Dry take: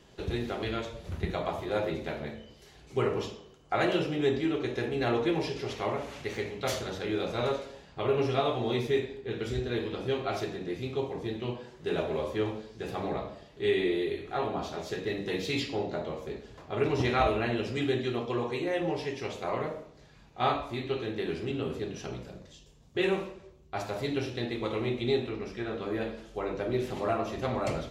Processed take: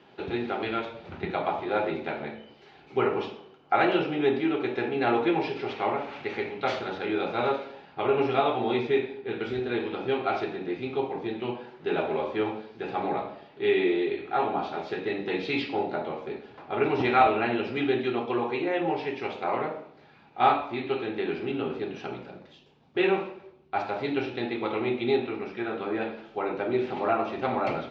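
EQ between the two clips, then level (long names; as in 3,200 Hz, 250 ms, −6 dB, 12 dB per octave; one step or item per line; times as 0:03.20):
loudspeaker in its box 150–4,200 Hz, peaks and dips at 260 Hz +4 dB, 370 Hz +4 dB, 820 Hz +10 dB, 1,400 Hz +7 dB, 2,400 Hz +6 dB
0.0 dB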